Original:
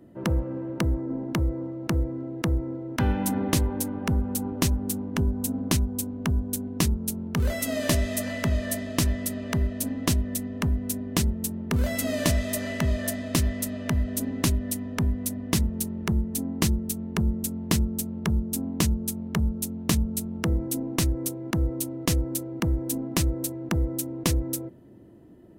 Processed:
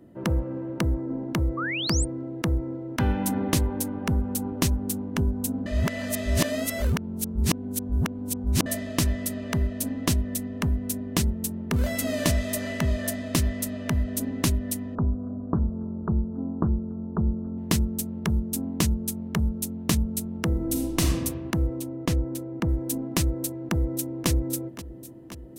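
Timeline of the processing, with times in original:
0:01.57–0:02.05: sound drawn into the spectrogram rise 1,100–8,900 Hz −30 dBFS
0:05.66–0:08.66: reverse
0:14.95–0:17.58: Butterworth low-pass 1,400 Hz 72 dB per octave
0:20.51–0:21.06: thrown reverb, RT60 1.3 s, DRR 1.5 dB
0:21.79–0:22.69: high-shelf EQ 3,700 Hz −10.5 dB
0:23.31–0:24.28: delay throw 530 ms, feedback 80%, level −15 dB

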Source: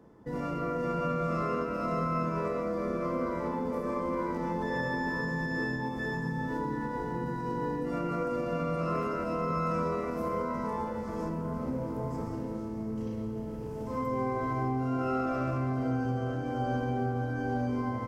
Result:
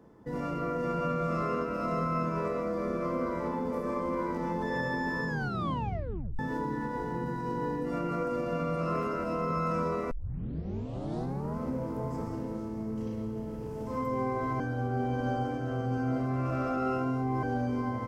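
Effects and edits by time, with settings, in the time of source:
0:05.27: tape stop 1.12 s
0:10.11: tape start 1.47 s
0:14.60–0:17.43: reverse

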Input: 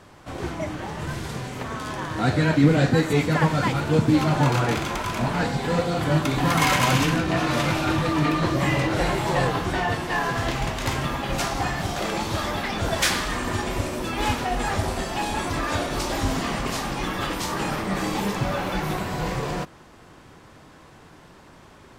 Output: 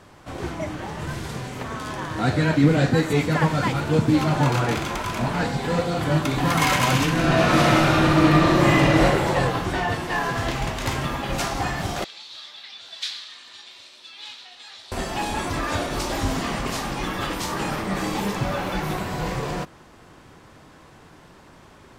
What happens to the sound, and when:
0:07.12–0:09.02: thrown reverb, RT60 1.6 s, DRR −4.5 dB
0:12.04–0:14.92: resonant band-pass 3,900 Hz, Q 4.1

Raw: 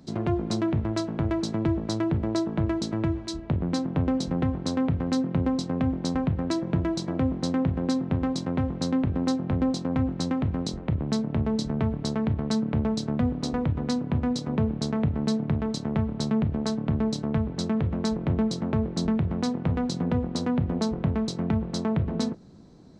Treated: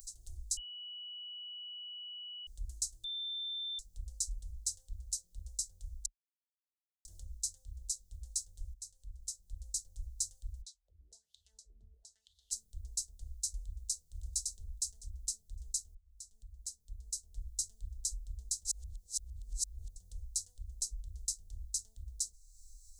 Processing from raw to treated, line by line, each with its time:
0:00.57–0:02.47: beep over 2,940 Hz −11 dBFS
0:03.04–0:03.79: beep over 3,560 Hz −15.5 dBFS
0:06.06–0:07.05: silence
0:08.74–0:09.78: fade in, from −13.5 dB
0:10.61–0:12.51: LFO wah 1.8 Hz → 0.73 Hz 260–3,700 Hz, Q 5.6
0:13.58–0:14.08: delay throw 560 ms, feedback 15%, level −3 dB
0:15.95–0:17.58: fade in
0:18.65–0:19.96: reverse
whole clip: inverse Chebyshev band-stop filter 120–2,500 Hz, stop band 60 dB; high-shelf EQ 6,700 Hz +7.5 dB; upward compression, threshold −56 dBFS; level +10.5 dB

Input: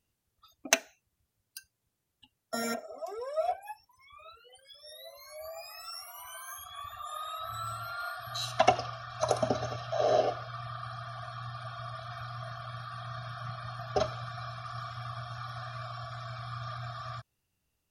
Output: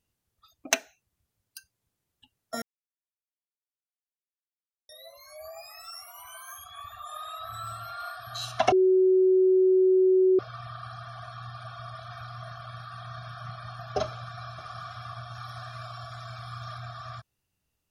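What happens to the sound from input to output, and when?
0:02.62–0:04.89: silence
0:08.72–0:10.39: beep over 374 Hz −17 dBFS
0:14.05–0:14.61: delay throw 530 ms, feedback 15%, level −6.5 dB
0:15.35–0:16.80: parametric band 16,000 Hz +7.5 dB 1.4 octaves

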